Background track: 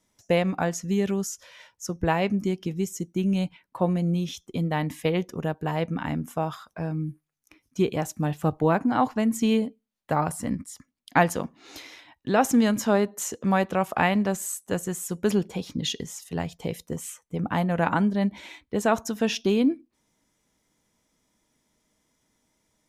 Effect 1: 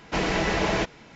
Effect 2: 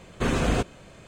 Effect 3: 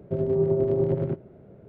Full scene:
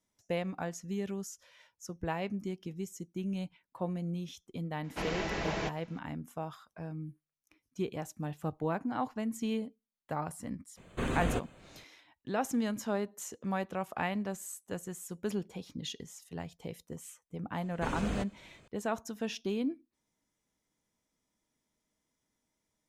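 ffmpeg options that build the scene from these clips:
-filter_complex "[2:a]asplit=2[a][b];[0:a]volume=-11.5dB[c];[a]equalizer=f=5.3k:t=o:w=0.37:g=-14.5[d];[1:a]atrim=end=1.15,asetpts=PTS-STARTPTS,volume=-10.5dB,afade=t=in:d=0.004:c=hsin,afade=t=out:st=1.146:d=0.004:c=hsin,adelay=4840[e];[d]atrim=end=1.07,asetpts=PTS-STARTPTS,volume=-8.5dB,afade=t=in:d=0.004:c=hsin,afade=t=out:st=1.066:d=0.004:c=hsin,adelay=10770[f];[b]atrim=end=1.07,asetpts=PTS-STARTPTS,volume=-12dB,afade=t=in:d=0.004:c=hsin,afade=t=out:st=1.066:d=0.004:c=hsin,adelay=17610[g];[c][e][f][g]amix=inputs=4:normalize=0"

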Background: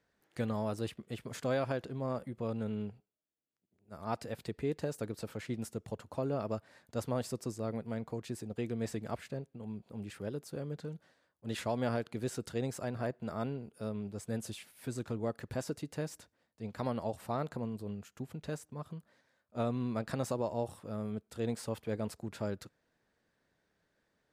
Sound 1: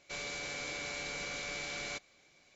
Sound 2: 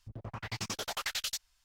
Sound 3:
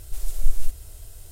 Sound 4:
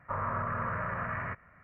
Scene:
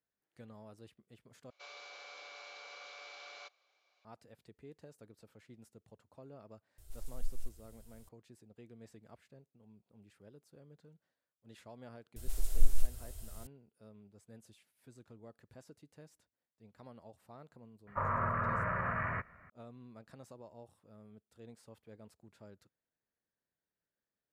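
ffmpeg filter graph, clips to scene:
-filter_complex "[3:a]asplit=2[a][b];[0:a]volume=-18.5dB[c];[1:a]highpass=f=490:w=0.5412,highpass=f=490:w=1.3066,equalizer=f=750:t=q:w=4:g=3,equalizer=f=1.2k:t=q:w=4:g=7,equalizer=f=1.9k:t=q:w=4:g=-7,lowpass=f=5.3k:w=0.5412,lowpass=f=5.3k:w=1.3066[d];[c]asplit=2[e][f];[e]atrim=end=1.504[g];[d]atrim=end=2.55,asetpts=PTS-STARTPTS,volume=-9.5dB[h];[f]atrim=start=4.046[i];[a]atrim=end=1.31,asetpts=PTS-STARTPTS,volume=-17.5dB,afade=t=in:d=0.004:c=hsin,afade=t=out:st=1.306:d=0.004:c=hsin,adelay=6780[j];[b]atrim=end=1.31,asetpts=PTS-STARTPTS,volume=-6dB,afade=t=in:d=0.004:c=hsin,afade=t=out:st=1.306:d=0.004:c=hsin,adelay=12160[k];[4:a]atrim=end=1.63,asetpts=PTS-STARTPTS,volume=-0.5dB,afade=t=in:d=0.004:c=hsin,afade=t=out:st=1.626:d=0.004:c=hsin,adelay=17870[l];[g][h]acrossfade=d=0.004:c1=hsin:c2=hsin[m];[m][i]acrossfade=d=0.004:c1=hsin:c2=hsin[n];[n][j][k][l]amix=inputs=4:normalize=0"

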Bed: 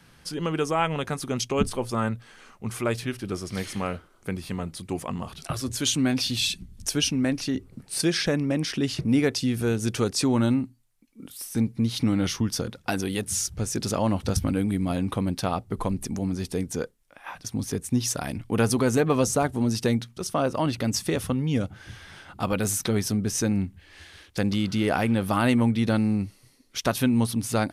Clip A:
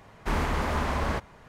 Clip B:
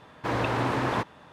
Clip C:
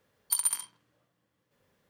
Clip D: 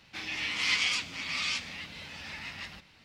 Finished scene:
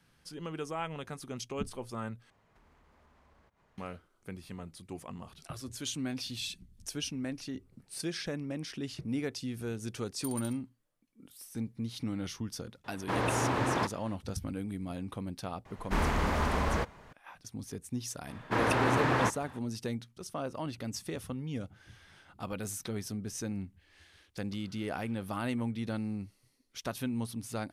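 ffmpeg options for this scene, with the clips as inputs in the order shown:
-filter_complex "[1:a]asplit=2[a][b];[2:a]asplit=2[c][d];[0:a]volume=-12.5dB[e];[a]acompressor=threshold=-46dB:ratio=6:attack=3.2:release=140:knee=1:detection=peak[f];[c]acontrast=48[g];[d]equalizer=f=1.7k:t=o:w=0.92:g=3[h];[e]asplit=2[i][j];[i]atrim=end=2.304[k];[f]atrim=end=1.48,asetpts=PTS-STARTPTS,volume=-17dB[l];[j]atrim=start=3.776[m];[3:a]atrim=end=1.89,asetpts=PTS-STARTPTS,volume=-15dB,afade=t=in:d=0.004:c=hsin,afade=t=out:st=1.886:d=0.004:c=hsin,adelay=9920[n];[g]atrim=end=1.32,asetpts=PTS-STARTPTS,volume=-9dB,afade=t=in:d=0.004:c=hsin,afade=t=out:st=1.316:d=0.004:c=hsin,adelay=566244S[o];[b]atrim=end=1.48,asetpts=PTS-STARTPTS,volume=-2dB,afade=t=in:d=0.004:c=hsin,afade=t=out:st=1.476:d=0.004:c=hsin,adelay=15650[p];[h]atrim=end=1.32,asetpts=PTS-STARTPTS,volume=-1.5dB,afade=t=in:d=0.004:c=hsin,afade=t=out:st=1.316:d=0.004:c=hsin,adelay=18270[q];[k][l]acrossfade=d=0.004:c1=hsin:c2=hsin[r];[r][m]acrossfade=d=0.004:c1=hsin:c2=hsin[s];[s][n][o][p][q]amix=inputs=5:normalize=0"

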